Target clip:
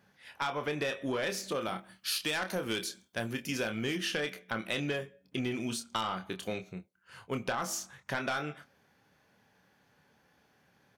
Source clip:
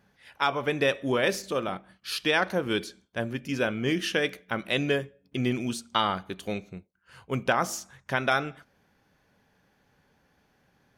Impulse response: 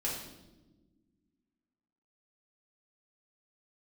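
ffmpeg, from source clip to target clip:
-filter_complex "[0:a]highpass=94,equalizer=f=240:w=0.44:g=-2.5,asplit=2[s0][s1];[s1]adelay=27,volume=0.398[s2];[s0][s2]amix=inputs=2:normalize=0,asoftclip=type=tanh:threshold=0.1,asettb=1/sr,asplit=3[s3][s4][s5];[s3]atrim=end=1.614[s6];[s4]atrim=start=1.61:end=3.97,asetpts=PTS-STARTPTS,afade=t=in:d=0.004:c=qsin,afade=t=out:st=2.356:d=0.004:c=qsin,highshelf=f=5300:g=10.5[s7];[s5]atrim=start=3.966[s8];[s6][s7]acrossfade=d=0.004:c1=hsin:c2=qsin[s9];[s9][s8]acrossfade=d=0.004:c1=qsin:c2=hsin,acompressor=threshold=0.0316:ratio=6"

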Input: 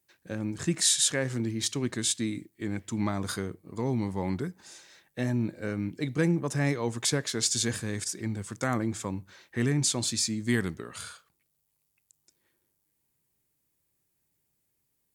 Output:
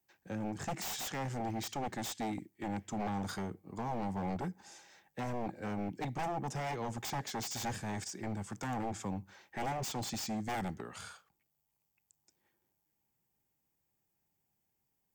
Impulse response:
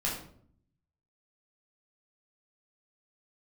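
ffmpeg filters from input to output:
-filter_complex "[0:a]aeval=exprs='0.282*(cos(1*acos(clip(val(0)/0.282,-1,1)))-cos(1*PI/2))+0.0141*(cos(5*acos(clip(val(0)/0.282,-1,1)))-cos(5*PI/2))':c=same,acrossover=split=180|440|1900[s0][s1][s2][s3];[s2]alimiter=level_in=2.51:limit=0.0631:level=0:latency=1:release=223,volume=0.398[s4];[s0][s1][s4][s3]amix=inputs=4:normalize=0,acrossover=split=7000[s5][s6];[s6]acompressor=threshold=0.01:ratio=4:attack=1:release=60[s7];[s5][s7]amix=inputs=2:normalize=0,aeval=exprs='0.0473*(abs(mod(val(0)/0.0473+3,4)-2)-1)':c=same,equalizer=f=200:t=o:w=0.33:g=4,equalizer=f=800:t=o:w=0.33:g=11,equalizer=f=4000:t=o:w=0.33:g=-6,equalizer=f=10000:t=o:w=0.33:g=-10,volume=0.473"

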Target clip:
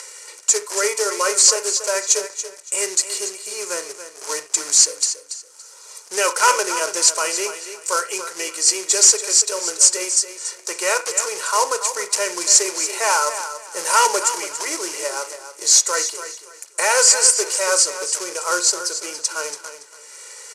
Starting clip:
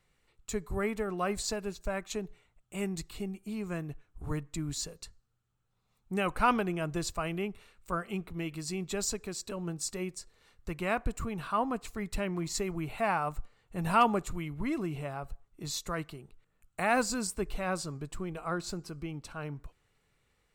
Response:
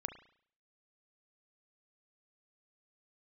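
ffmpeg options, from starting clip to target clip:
-filter_complex "[0:a]aecho=1:1:2.1:0.89,acompressor=mode=upward:threshold=0.0126:ratio=2.5,acrusher=bits=3:mode=log:mix=0:aa=0.000001,aexciter=amount=2.8:drive=8.3:freq=4100,asoftclip=type=tanh:threshold=0.112,highpass=f=480:w=0.5412,highpass=f=480:w=1.3066,equalizer=f=780:t=q:w=4:g=-5,equalizer=f=3700:t=q:w=4:g=-9,equalizer=f=6100:t=q:w=4:g=5,lowpass=f=9100:w=0.5412,lowpass=f=9100:w=1.3066,aecho=1:1:283|566|849:0.282|0.0705|0.0176,asplit=2[s0][s1];[1:a]atrim=start_sample=2205,atrim=end_sample=4410[s2];[s1][s2]afir=irnorm=-1:irlink=0,volume=2.37[s3];[s0][s3]amix=inputs=2:normalize=0,volume=1.5"

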